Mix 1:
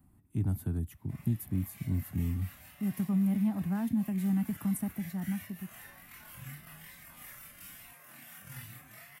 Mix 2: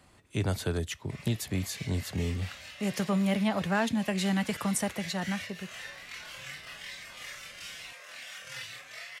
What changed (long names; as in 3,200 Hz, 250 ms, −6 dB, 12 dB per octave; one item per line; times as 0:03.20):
background −10.0 dB
master: remove drawn EQ curve 280 Hz 0 dB, 510 Hz −23 dB, 770 Hz −12 dB, 4,200 Hz −27 dB, 6,700 Hz −22 dB, 13,000 Hz +3 dB